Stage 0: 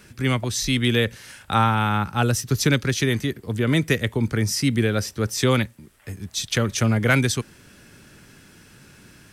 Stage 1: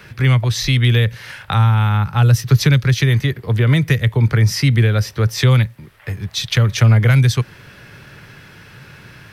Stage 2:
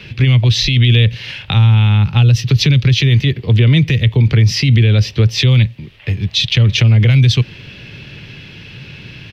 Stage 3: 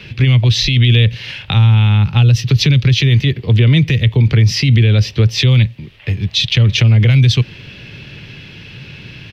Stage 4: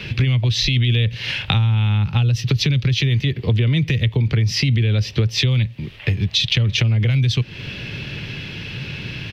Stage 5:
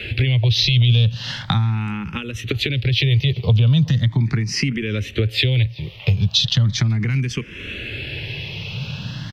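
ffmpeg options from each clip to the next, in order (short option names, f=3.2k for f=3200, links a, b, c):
-filter_complex "[0:a]equalizer=f=125:t=o:w=1:g=9,equalizer=f=250:t=o:w=1:g=-6,equalizer=f=500:t=o:w=1:g=4,equalizer=f=1k:t=o:w=1:g=5,equalizer=f=2k:t=o:w=1:g=6,equalizer=f=4k:t=o:w=1:g=4,equalizer=f=8k:t=o:w=1:g=-10,acrossover=split=210|4800[a][b][c];[b]acompressor=threshold=-25dB:ratio=6[d];[a][d][c]amix=inputs=3:normalize=0,volume=4.5dB"
-af "firequalizer=gain_entry='entry(260,0);entry(630,-7);entry(1400,-13);entry(2700,6);entry(8900,-18)':delay=0.05:min_phase=1,alimiter=limit=-11.5dB:level=0:latency=1:release=33,volume=7.5dB"
-af anull
-af "acompressor=threshold=-20dB:ratio=5,volume=4dB"
-filter_complex "[0:a]asplit=2[a][b];[b]adelay=380,highpass=300,lowpass=3.4k,asoftclip=type=hard:threshold=-10.5dB,volume=-21dB[c];[a][c]amix=inputs=2:normalize=0,asplit=2[d][e];[e]afreqshift=0.38[f];[d][f]amix=inputs=2:normalize=1,volume=3dB"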